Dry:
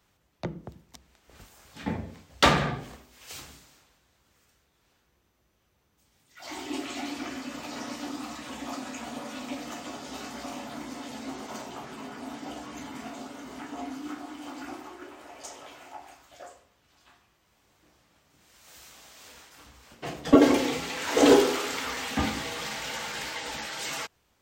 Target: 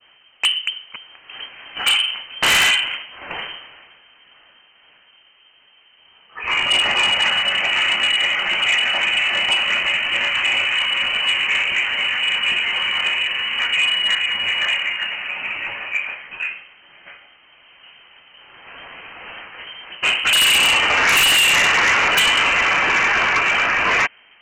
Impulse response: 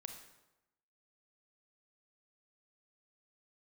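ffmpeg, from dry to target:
-filter_complex "[0:a]acrossover=split=330[s0][s1];[s1]aeval=exprs='0.0841*(abs(mod(val(0)/0.0841+3,4)-2)-1)':c=same[s2];[s0][s2]amix=inputs=2:normalize=0,alimiter=limit=0.106:level=0:latency=1:release=199,adynamicequalizer=threshold=0.00398:dfrequency=1100:dqfactor=0.76:tfrequency=1100:tqfactor=0.76:attack=5:release=100:ratio=0.375:range=3:mode=boostabove:tftype=bell,lowpass=f=2700:t=q:w=0.5098,lowpass=f=2700:t=q:w=0.6013,lowpass=f=2700:t=q:w=0.9,lowpass=f=2700:t=q:w=2.563,afreqshift=-3200,aeval=exprs='0.133*(cos(1*acos(clip(val(0)/0.133,-1,1)))-cos(1*PI/2))+0.0531*(cos(5*acos(clip(val(0)/0.133,-1,1)))-cos(5*PI/2))':c=same,volume=2.66"

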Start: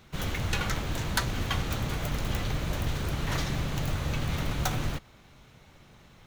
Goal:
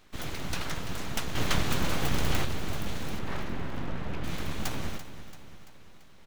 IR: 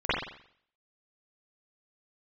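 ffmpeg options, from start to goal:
-filter_complex "[0:a]asettb=1/sr,asplit=3[s0][s1][s2];[s0]atrim=end=1.354[s3];[s1]atrim=start=1.35:end=2.45,asetpts=PTS-STARTPTS,afade=t=in:d=0.004:c=qsin,afade=t=out:st=1.096:d=0.004:c=qsin,acontrast=75[s4];[s2]atrim=start=2.446[s5];[s3][s4]acrossfade=d=0.004:c1=hsin:c2=qsin[s6];[s6][s5]acrossfade=d=0.004:c1=qsin:c2=hsin,asettb=1/sr,asplit=3[s7][s8][s9];[s7]atrim=end=3.194[s10];[s8]atrim=start=3.19:end=4.24,asetpts=PTS-STARTPTS,afade=t=in:d=0.004:c=qsin,afade=t=out:st=1.046:d=0.004:c=qsin,lowpass=2100[s11];[s9]atrim=start=4.236[s12];[s10][s11]acrossfade=d=0.004:c1=hsin:c2=qsin[s13];[s13][s12]acrossfade=d=0.004:c1=qsin:c2=hsin,aeval=exprs='abs(val(0))':c=same,aecho=1:1:338|676|1014|1352|1690:0.237|0.126|0.0666|0.0353|0.0187,volume=0.794"

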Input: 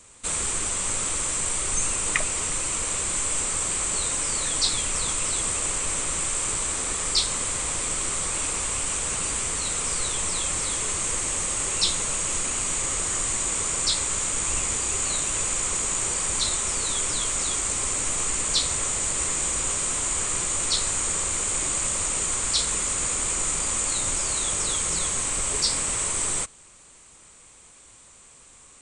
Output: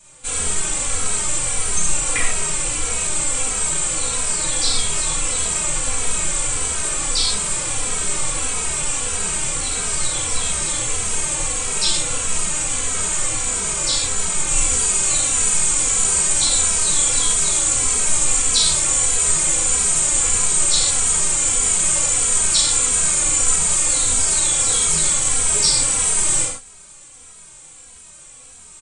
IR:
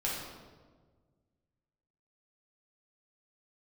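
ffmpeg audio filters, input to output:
-filter_complex "[0:a]asetnsamples=n=441:p=0,asendcmd='14.48 highshelf g 10',highshelf=f=6100:g=3.5[s0];[1:a]atrim=start_sample=2205,atrim=end_sample=6615[s1];[s0][s1]afir=irnorm=-1:irlink=0,asplit=2[s2][s3];[s3]adelay=2.8,afreqshift=-1.6[s4];[s2][s4]amix=inputs=2:normalize=1,volume=1.33"

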